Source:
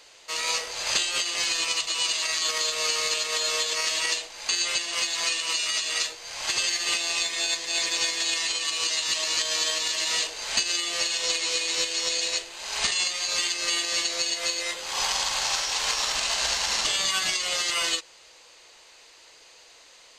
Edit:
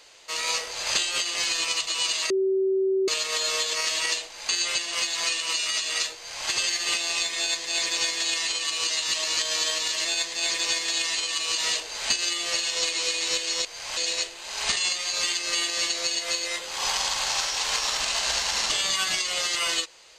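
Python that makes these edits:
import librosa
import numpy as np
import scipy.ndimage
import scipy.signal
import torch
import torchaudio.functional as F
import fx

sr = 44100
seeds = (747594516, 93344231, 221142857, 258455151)

y = fx.edit(x, sr, fx.bleep(start_s=2.3, length_s=0.78, hz=383.0, db=-20.0),
    fx.duplicate(start_s=6.16, length_s=0.32, to_s=12.12),
    fx.duplicate(start_s=7.37, length_s=1.53, to_s=10.05), tone=tone)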